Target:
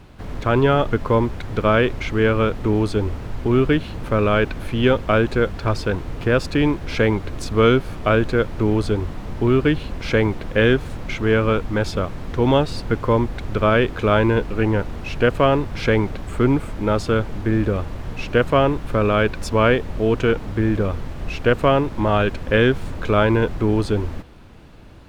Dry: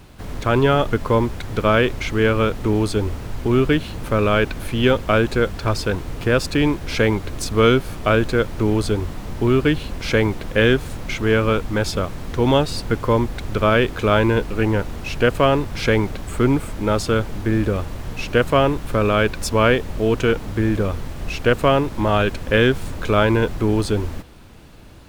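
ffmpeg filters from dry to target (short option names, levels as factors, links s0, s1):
-af "highshelf=f=5400:g=-11.5"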